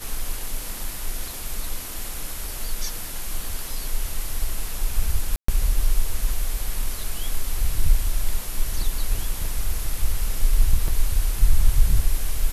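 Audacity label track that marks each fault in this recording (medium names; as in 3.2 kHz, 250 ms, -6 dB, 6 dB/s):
1.340000	1.340000	pop
5.360000	5.480000	dropout 124 ms
10.880000	10.880000	dropout 3.9 ms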